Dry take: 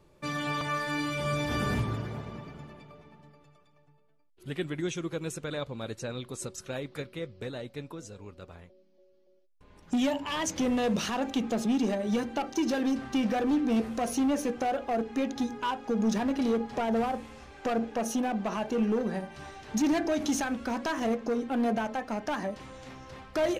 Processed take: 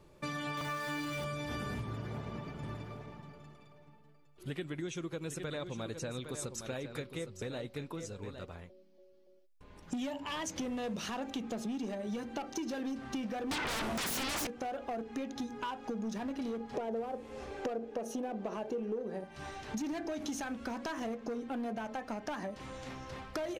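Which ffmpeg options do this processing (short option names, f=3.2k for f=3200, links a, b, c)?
-filter_complex "[0:a]asettb=1/sr,asplit=3[a][b][c];[a]atrim=end=0.574[d];[b]atrim=start=0.57:end=1.25,asetpts=PTS-STARTPTS,afade=t=in:d=0.004:c=qsin,afade=t=out:st=0.676:d=0.004:c=qsin,aeval=exprs='val(0)+0.5*0.0178*sgn(val(0))':c=same[e];[c]atrim=start=1.246[f];[d][e]acrossfade=d=0.004:c1=hsin:c2=qsin[g];[g][f]acrossfade=d=0.004:c1=qsin:c2=hsin,asplit=3[h][i][j];[h]afade=t=out:st=2.62:d=0.02[k];[i]aecho=1:1:810:0.266,afade=t=in:st=2.62:d=0.02,afade=t=out:st=8.44:d=0.02[l];[j]afade=t=in:st=8.44:d=0.02[m];[k][l][m]amix=inputs=3:normalize=0,asettb=1/sr,asplit=3[n][o][p];[n]atrim=end=13.514[q];[o]atrim=start=13.51:end=14.47,asetpts=PTS-STARTPTS,afade=t=in:d=0.004:c=qsin,afade=t=out:st=0.956:d=0.004:c=qsin,aeval=exprs='0.112*sin(PI/2*8.91*val(0)/0.112)':c=same[r];[p]atrim=start=14.466[s];[q][r]acrossfade=d=0.004:c1=hsin:c2=qsin[t];[t][s]acrossfade=d=0.004:c1=qsin:c2=hsin,asettb=1/sr,asplit=3[u][v][w];[u]atrim=end=16.744[x];[v]atrim=start=16.74:end=19.24,asetpts=PTS-STARTPTS,afade=t=in:d=0.004:c=qsin,afade=t=out:st=2.496:d=0.004:c=qsin,equalizer=f=450:w=1.2:g=11.5[y];[w]atrim=start=19.236[z];[x][y]acrossfade=d=0.004:c1=hsin:c2=qsin[aa];[aa][z]acrossfade=d=0.004:c1=qsin:c2=hsin,acompressor=threshold=-37dB:ratio=6,volume=1dB"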